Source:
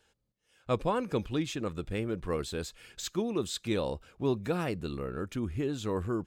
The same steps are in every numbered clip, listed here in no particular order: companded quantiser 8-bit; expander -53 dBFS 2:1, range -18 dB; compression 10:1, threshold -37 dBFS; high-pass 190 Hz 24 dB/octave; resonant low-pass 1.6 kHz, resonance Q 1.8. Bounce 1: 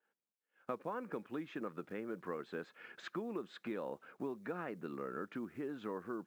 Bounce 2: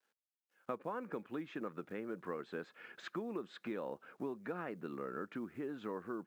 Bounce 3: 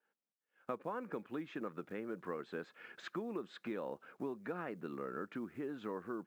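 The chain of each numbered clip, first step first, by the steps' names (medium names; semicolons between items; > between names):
resonant low-pass > compression > companded quantiser > expander > high-pass; expander > resonant low-pass > companded quantiser > compression > high-pass; resonant low-pass > companded quantiser > compression > expander > high-pass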